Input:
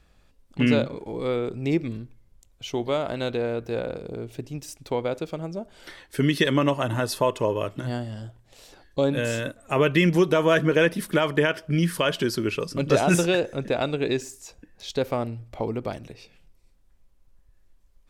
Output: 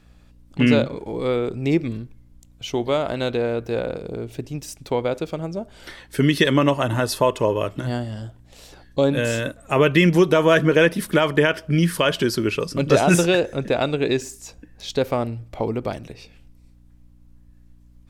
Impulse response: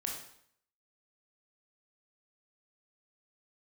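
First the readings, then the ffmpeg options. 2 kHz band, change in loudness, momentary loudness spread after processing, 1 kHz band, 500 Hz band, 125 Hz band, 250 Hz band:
+4.0 dB, +4.0 dB, 16 LU, +4.0 dB, +4.0 dB, +4.0 dB, +4.0 dB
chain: -af "aeval=exprs='val(0)+0.00178*(sin(2*PI*60*n/s)+sin(2*PI*2*60*n/s)/2+sin(2*PI*3*60*n/s)/3+sin(2*PI*4*60*n/s)/4+sin(2*PI*5*60*n/s)/5)':c=same,volume=4dB"

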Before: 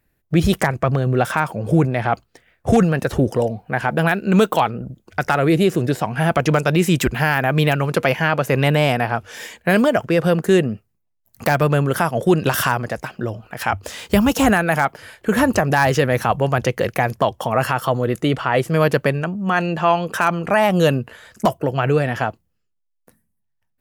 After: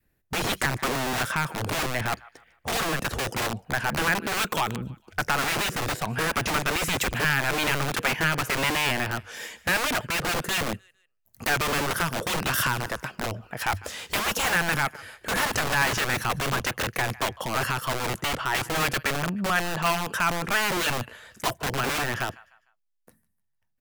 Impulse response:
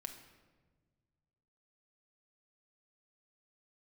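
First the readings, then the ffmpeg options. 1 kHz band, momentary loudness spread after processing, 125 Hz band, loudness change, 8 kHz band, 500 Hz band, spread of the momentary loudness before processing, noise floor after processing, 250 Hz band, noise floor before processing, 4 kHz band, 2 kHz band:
-7.0 dB, 8 LU, -12.5 dB, -7.5 dB, +2.0 dB, -13.5 dB, 9 LU, -73 dBFS, -14.0 dB, -71 dBFS, +1.0 dB, -2.5 dB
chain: -filter_complex "[0:a]adynamicequalizer=threshold=0.0224:dfrequency=750:dqfactor=1.9:tfrequency=750:tqfactor=1.9:attack=5:release=100:ratio=0.375:range=3:mode=cutabove:tftype=bell,acrossover=split=850[a][b];[a]aeval=exprs='(mod(8.91*val(0)+1,2)-1)/8.91':c=same[c];[b]aecho=1:1:151|302|453:0.112|0.0404|0.0145[d];[c][d]amix=inputs=2:normalize=0,volume=-3.5dB"

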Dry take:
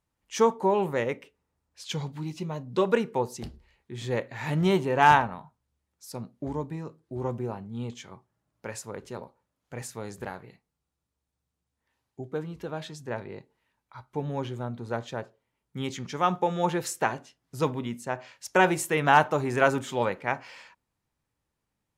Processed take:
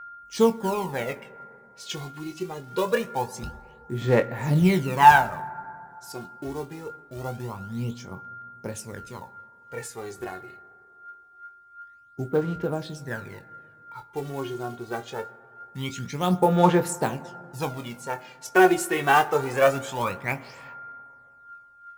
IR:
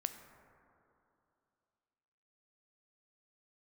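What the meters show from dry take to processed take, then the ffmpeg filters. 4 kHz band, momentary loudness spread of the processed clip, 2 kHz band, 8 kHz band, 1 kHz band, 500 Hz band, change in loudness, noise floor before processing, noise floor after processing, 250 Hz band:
+2.0 dB, 21 LU, +2.5 dB, +2.5 dB, +3.5 dB, +2.5 dB, +3.0 dB, -84 dBFS, -53 dBFS, +4.0 dB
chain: -filter_complex "[0:a]acrusher=bits=5:mode=log:mix=0:aa=0.000001,aeval=exprs='val(0)+0.00447*sin(2*PI*1400*n/s)':c=same,aphaser=in_gain=1:out_gain=1:delay=2.8:decay=0.69:speed=0.24:type=sinusoidal,asplit=2[a][b];[1:a]atrim=start_sample=2205,adelay=22[c];[b][c]afir=irnorm=-1:irlink=0,volume=-8.5dB[d];[a][d]amix=inputs=2:normalize=0,volume=-1.5dB"

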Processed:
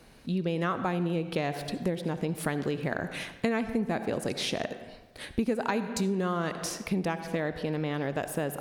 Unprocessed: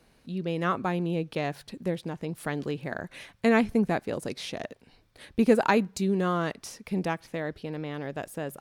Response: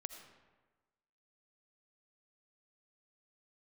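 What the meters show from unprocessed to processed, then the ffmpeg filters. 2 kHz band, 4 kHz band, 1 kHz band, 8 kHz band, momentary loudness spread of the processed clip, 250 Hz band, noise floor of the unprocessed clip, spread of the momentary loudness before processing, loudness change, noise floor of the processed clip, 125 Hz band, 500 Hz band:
-2.0 dB, +3.0 dB, -2.5 dB, +4.0 dB, 5 LU, -2.0 dB, -63 dBFS, 13 LU, -2.0 dB, -52 dBFS, +0.5 dB, -2.5 dB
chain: -filter_complex "[0:a]asplit=2[a][b];[1:a]atrim=start_sample=2205,asetrate=52920,aresample=44100[c];[b][c]afir=irnorm=-1:irlink=0,volume=7dB[d];[a][d]amix=inputs=2:normalize=0,acompressor=threshold=-26dB:ratio=6"

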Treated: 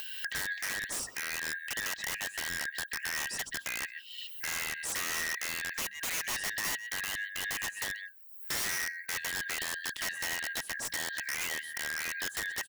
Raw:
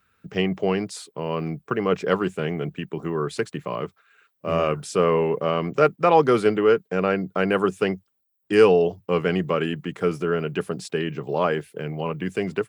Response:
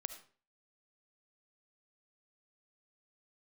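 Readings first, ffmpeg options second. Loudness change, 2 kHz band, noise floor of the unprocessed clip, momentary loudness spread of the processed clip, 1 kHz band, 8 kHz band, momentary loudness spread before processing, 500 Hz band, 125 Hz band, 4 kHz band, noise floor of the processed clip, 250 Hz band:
-10.5 dB, -0.5 dB, -73 dBFS, 3 LU, -17.5 dB, n/a, 12 LU, -30.0 dB, -25.5 dB, 0.0 dB, -49 dBFS, -27.0 dB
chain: -filter_complex "[0:a]afftfilt=real='real(if(lt(b,272),68*(eq(floor(b/68),0)*3+eq(floor(b/68),1)*0+eq(floor(b/68),2)*1+eq(floor(b/68),3)*2)+mod(b,68),b),0)':imag='imag(if(lt(b,272),68*(eq(floor(b/68),0)*3+eq(floor(b/68),1)*0+eq(floor(b/68),2)*1+eq(floor(b/68),3)*2)+mod(b,68),b),0)':win_size=2048:overlap=0.75,asplit=2[a][b];[b]adelay=130,highpass=300,lowpass=3.4k,asoftclip=type=hard:threshold=-12.5dB,volume=-17dB[c];[a][c]amix=inputs=2:normalize=0,acrossover=split=450|3000[d][e][f];[e]acompressor=threshold=-32dB:ratio=2[g];[d][g][f]amix=inputs=3:normalize=0,asplit=2[h][i];[i]acrusher=bits=2:mix=0:aa=0.5,volume=-7dB[j];[h][j]amix=inputs=2:normalize=0,acompressor=mode=upward:threshold=-19dB:ratio=2.5,aemphasis=mode=production:type=75kf,bandreject=f=50:t=h:w=6,bandreject=f=100:t=h:w=6,bandreject=f=150:t=h:w=6,bandreject=f=200:t=h:w=6,asoftclip=type=tanh:threshold=-9dB,highshelf=f=4.3k:g=-8,aeval=exprs='(mod(8.91*val(0)+1,2)-1)/8.91':c=same,alimiter=limit=-23dB:level=0:latency=1:release=209,volume=-5dB"

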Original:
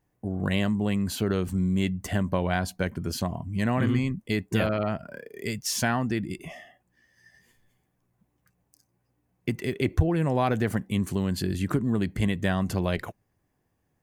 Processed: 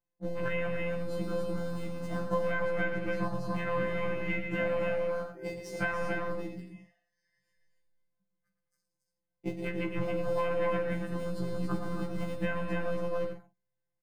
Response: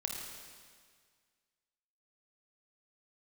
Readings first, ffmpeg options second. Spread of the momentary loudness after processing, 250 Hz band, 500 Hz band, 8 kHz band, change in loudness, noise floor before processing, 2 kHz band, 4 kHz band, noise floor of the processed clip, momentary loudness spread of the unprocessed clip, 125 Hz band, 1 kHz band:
9 LU, -9.5 dB, -0.5 dB, -18.5 dB, -6.0 dB, -74 dBFS, -2.0 dB, -12.5 dB, -85 dBFS, 9 LU, -10.5 dB, -4.5 dB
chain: -filter_complex "[0:a]asplit=2[a][b];[b]acrusher=bits=3:mix=0:aa=0.000001,volume=-4.5dB[c];[a][c]amix=inputs=2:normalize=0,afwtdn=0.0355,afftfilt=real='hypot(re,im)*cos(PI*b)':imag='0':win_size=1024:overlap=0.75,highshelf=f=6.4k:g=-10,bandreject=f=3.3k:w=12,asplit=2[d][e];[e]adelay=46,volume=-11dB[f];[d][f]amix=inputs=2:normalize=0,asplit=2[g][h];[h]aecho=0:1:112|208|280|363:0.376|0.188|0.631|0.237[i];[g][i]amix=inputs=2:normalize=0,acrossover=split=100|2400[j][k][l];[j]acompressor=threshold=-43dB:ratio=4[m];[k]acompressor=threshold=-33dB:ratio=4[n];[l]acompressor=threshold=-53dB:ratio=4[o];[m][n][o]amix=inputs=3:normalize=0,equalizer=f=430:w=5.7:g=-8,afftfilt=real='re*1.73*eq(mod(b,3),0)':imag='im*1.73*eq(mod(b,3),0)':win_size=2048:overlap=0.75,volume=7.5dB"

